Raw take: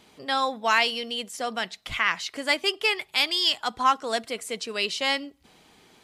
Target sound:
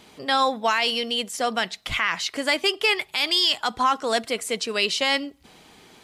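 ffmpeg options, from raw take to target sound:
-af "alimiter=limit=0.15:level=0:latency=1:release=30,volume=1.88"

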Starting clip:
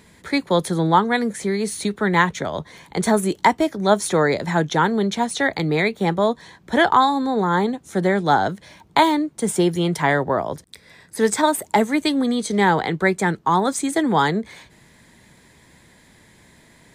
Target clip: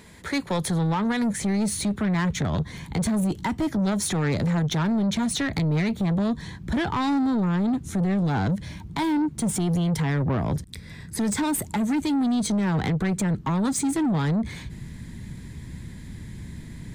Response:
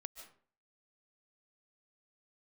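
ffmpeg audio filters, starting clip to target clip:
-af "asubboost=boost=10.5:cutoff=190,alimiter=limit=0.188:level=0:latency=1:release=77,asoftclip=type=tanh:threshold=0.0794,volume=1.26"

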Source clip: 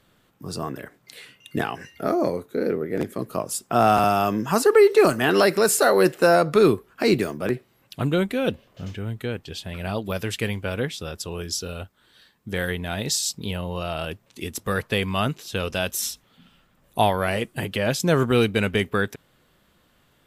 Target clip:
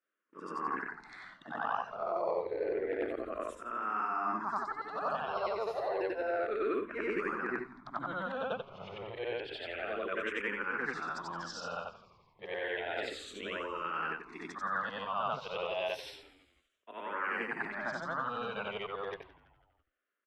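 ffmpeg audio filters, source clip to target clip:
-filter_complex "[0:a]afftfilt=real='re':imag='-im':win_size=8192:overlap=0.75,agate=range=0.0631:threshold=0.002:ratio=16:detection=peak,deesser=0.35,equalizer=f=1200:w=0.72:g=12,areverse,acompressor=threshold=0.0447:ratio=16,areverse,highpass=300,lowpass=3000,asplit=5[s0][s1][s2][s3][s4];[s1]adelay=166,afreqshift=-120,volume=0.112[s5];[s2]adelay=332,afreqshift=-240,volume=0.0603[s6];[s3]adelay=498,afreqshift=-360,volume=0.0327[s7];[s4]adelay=664,afreqshift=-480,volume=0.0176[s8];[s0][s5][s6][s7][s8]amix=inputs=5:normalize=0,asplit=2[s9][s10];[s10]afreqshift=-0.3[s11];[s9][s11]amix=inputs=2:normalize=1"

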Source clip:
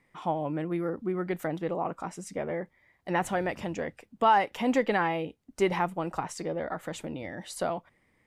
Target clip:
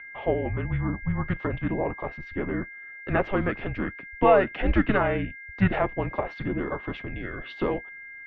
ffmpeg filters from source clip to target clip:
-filter_complex "[0:a]aeval=exprs='val(0)+0.00631*sin(2*PI*2300*n/s)':c=same,asplit=2[s0][s1];[s1]asetrate=35002,aresample=44100,atempo=1.25992,volume=0.562[s2];[s0][s2]amix=inputs=2:normalize=0,highpass=f=190:t=q:w=0.5412,highpass=f=190:t=q:w=1.307,lowpass=f=3600:t=q:w=0.5176,lowpass=f=3600:t=q:w=0.7071,lowpass=f=3600:t=q:w=1.932,afreqshift=-200,volume=1.41"

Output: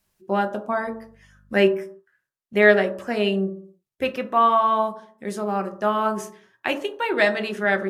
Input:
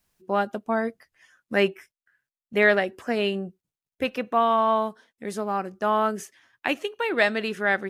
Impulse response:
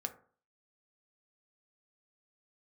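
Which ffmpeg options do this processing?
-filter_complex "[0:a]asettb=1/sr,asplit=3[s0][s1][s2];[s0]atrim=end=0.854[s3];[s1]atrim=start=0.85:end=1.65,asetpts=PTS-STARTPTS,afade=t=in:d=0.004:c=qsin,afade=t=out:st=0.796:d=0.004:c=qsin,aeval=exprs='val(0)+0.00141*(sin(2*PI*50*n/s)+sin(2*PI*2*50*n/s)/2+sin(2*PI*3*50*n/s)/3+sin(2*PI*4*50*n/s)/4+sin(2*PI*5*50*n/s)/5)':c=same[s4];[s2]atrim=start=1.646[s5];[s3][s4]acrossfade=d=0.004:c1=hsin:c2=qsin[s6];[s6][s5]acrossfade=d=0.004:c1=qsin:c2=hsin[s7];[1:a]atrim=start_sample=2205,afade=t=out:st=0.31:d=0.01,atrim=end_sample=14112,asetrate=33516,aresample=44100[s8];[s7][s8]afir=irnorm=-1:irlink=0,volume=1.12"

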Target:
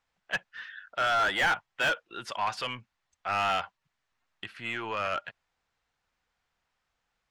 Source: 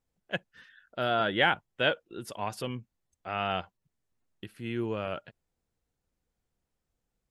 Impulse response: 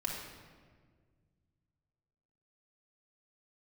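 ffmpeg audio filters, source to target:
-filter_complex "[0:a]lowpass=6700,acrossover=split=760[s0][s1];[s0]asoftclip=type=tanh:threshold=0.0188[s2];[s1]asplit=2[s3][s4];[s4]highpass=f=720:p=1,volume=20,asoftclip=type=tanh:threshold=0.251[s5];[s3][s5]amix=inputs=2:normalize=0,lowpass=f=2100:p=1,volume=0.501[s6];[s2][s6]amix=inputs=2:normalize=0,volume=0.596"

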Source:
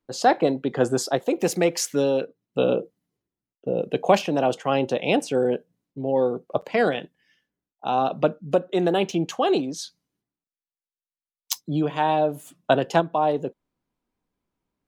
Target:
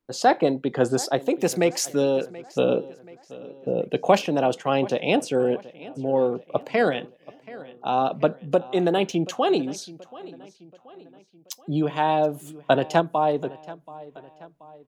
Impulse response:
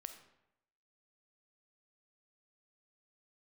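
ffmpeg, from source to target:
-filter_complex "[0:a]asettb=1/sr,asplit=3[s0][s1][s2];[s0]atrim=end=9.784[s3];[s1]atrim=start=9.78:end=11.6,asetpts=PTS-STARTPTS,afade=t=in:d=0.004:c=qsin,afade=t=out:st=1.816:d=0.004:c=qsin,acompressor=threshold=0.0178:ratio=6[s4];[s2]atrim=start=11.596[s5];[s3][s4]acrossfade=d=0.004:c1=hsin:c2=qsin[s6];[s6][s5]acrossfade=d=0.004:c1=qsin:c2=hsin,asplit=2[s7][s8];[s8]adelay=730,lowpass=f=5000:p=1,volume=0.112,asplit=2[s9][s10];[s10]adelay=730,lowpass=f=5000:p=1,volume=0.48,asplit=2[s11][s12];[s12]adelay=730,lowpass=f=5000:p=1,volume=0.48,asplit=2[s13][s14];[s14]adelay=730,lowpass=f=5000:p=1,volume=0.48[s15];[s7][s9][s11][s13][s15]amix=inputs=5:normalize=0"

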